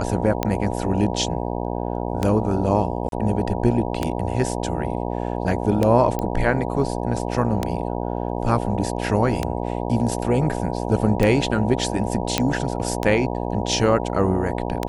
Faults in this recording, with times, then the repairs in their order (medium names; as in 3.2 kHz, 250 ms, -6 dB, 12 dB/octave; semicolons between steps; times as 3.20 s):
buzz 60 Hz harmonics 16 -26 dBFS
tick 33 1/3 rpm -7 dBFS
3.09–3.12 s: dropout 32 ms
6.19 s: pop -12 dBFS
12.38 s: pop -3 dBFS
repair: de-click; de-hum 60 Hz, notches 16; interpolate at 3.09 s, 32 ms